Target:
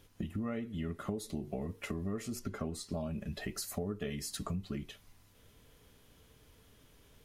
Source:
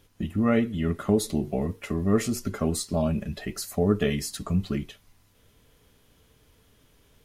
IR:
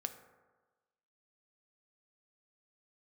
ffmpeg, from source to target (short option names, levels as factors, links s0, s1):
-filter_complex "[0:a]asettb=1/sr,asplit=3[s0][s1][s2];[s0]atrim=end=2.394[s3];[s1]atrim=start=2.39:end=2.92,asetpts=PTS-STARTPTS,afade=t=in:d=0.004:c=qsin,afade=t=out:st=0.526:d=0.004:c=qsin,highshelf=f=6100:g=-7.5[s4];[s2]atrim=start=2.916[s5];[s3][s4]acrossfade=d=0.004:c1=hsin:c2=qsin[s6];[s6][s5]acrossfade=d=0.004:c1=qsin:c2=hsin,acompressor=threshold=0.02:ratio=5,volume=0.841"